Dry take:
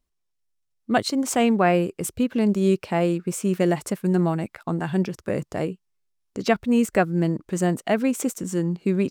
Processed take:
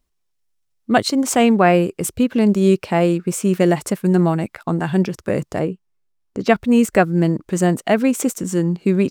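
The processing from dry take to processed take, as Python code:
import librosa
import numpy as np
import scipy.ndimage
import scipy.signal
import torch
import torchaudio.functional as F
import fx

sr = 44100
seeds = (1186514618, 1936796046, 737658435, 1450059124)

y = fx.high_shelf(x, sr, hz=2200.0, db=-9.0, at=(5.59, 6.49))
y = y * librosa.db_to_amplitude(5.5)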